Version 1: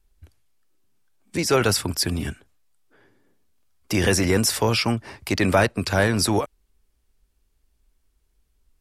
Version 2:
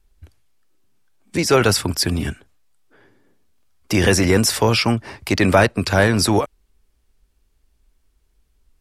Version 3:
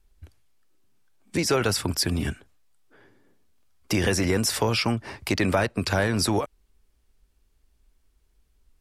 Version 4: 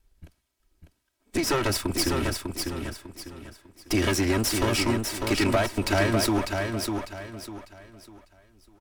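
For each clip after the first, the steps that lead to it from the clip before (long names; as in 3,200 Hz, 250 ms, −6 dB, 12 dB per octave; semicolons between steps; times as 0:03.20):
high-shelf EQ 8,000 Hz −4 dB; level +4.5 dB
downward compressor 2.5 to 1, threshold −19 dBFS, peak gain reduction 7.5 dB; level −2.5 dB
lower of the sound and its delayed copy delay 3.1 ms; repeating echo 599 ms, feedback 32%, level −5 dB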